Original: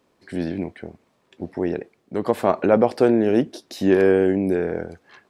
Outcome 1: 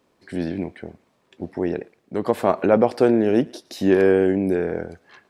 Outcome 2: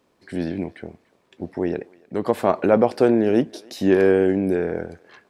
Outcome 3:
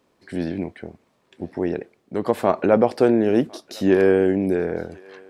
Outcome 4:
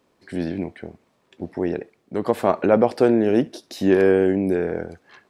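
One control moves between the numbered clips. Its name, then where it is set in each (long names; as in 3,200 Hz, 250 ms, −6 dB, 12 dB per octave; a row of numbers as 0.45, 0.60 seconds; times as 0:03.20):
feedback echo with a high-pass in the loop, delay time: 113, 292, 1,055, 69 milliseconds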